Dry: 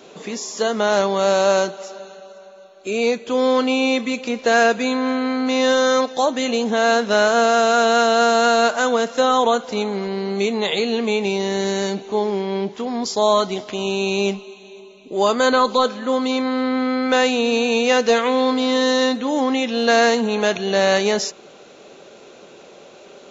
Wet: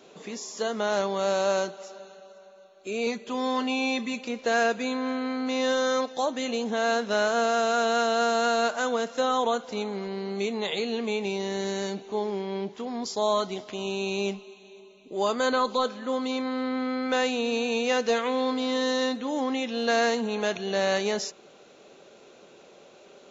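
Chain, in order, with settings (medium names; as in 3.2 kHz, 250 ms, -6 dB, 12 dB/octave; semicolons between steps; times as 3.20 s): 3.06–4.25 s: comb 5 ms, depth 60%; trim -8.5 dB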